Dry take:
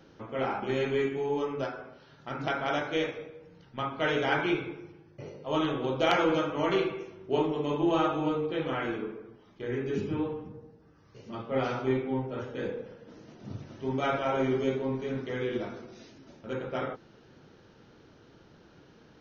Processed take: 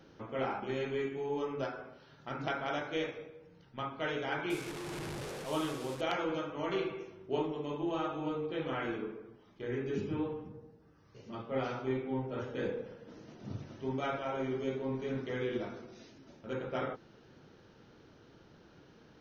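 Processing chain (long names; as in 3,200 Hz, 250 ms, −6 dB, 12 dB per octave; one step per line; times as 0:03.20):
0:04.50–0:06.01: linear delta modulator 64 kbit/s, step −32.5 dBFS
speech leveller within 4 dB 0.5 s
level −5.5 dB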